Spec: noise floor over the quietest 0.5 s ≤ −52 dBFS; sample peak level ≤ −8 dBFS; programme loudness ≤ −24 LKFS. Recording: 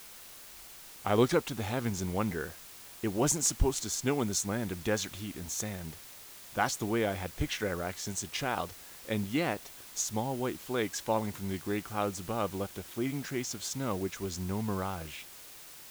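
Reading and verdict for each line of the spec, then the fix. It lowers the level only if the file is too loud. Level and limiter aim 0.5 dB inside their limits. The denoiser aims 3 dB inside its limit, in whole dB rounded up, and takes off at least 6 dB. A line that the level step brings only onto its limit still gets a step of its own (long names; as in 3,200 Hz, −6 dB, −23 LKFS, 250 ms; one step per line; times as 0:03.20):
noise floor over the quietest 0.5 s −50 dBFS: out of spec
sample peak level −13.0 dBFS: in spec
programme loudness −33.0 LKFS: in spec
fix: broadband denoise 6 dB, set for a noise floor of −50 dBFS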